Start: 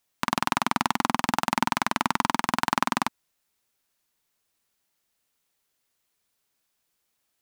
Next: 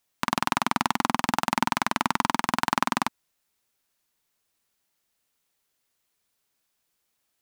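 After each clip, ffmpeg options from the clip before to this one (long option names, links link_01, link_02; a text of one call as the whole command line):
ffmpeg -i in.wav -af anull out.wav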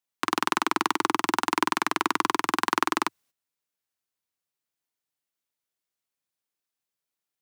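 ffmpeg -i in.wav -af "afreqshift=84,agate=range=-12dB:threshold=-56dB:ratio=16:detection=peak" out.wav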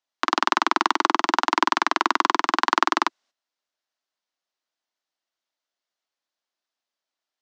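ffmpeg -i in.wav -af "highpass=frequency=260:width=0.5412,highpass=frequency=260:width=1.3066,equalizer=frequency=310:width_type=q:width=4:gain=-3,equalizer=frequency=440:width_type=q:width=4:gain=-7,equalizer=frequency=640:width_type=q:width=4:gain=4,equalizer=frequency=2400:width_type=q:width=4:gain=-4,lowpass=frequency=6000:width=0.5412,lowpass=frequency=6000:width=1.3066,volume=5dB" out.wav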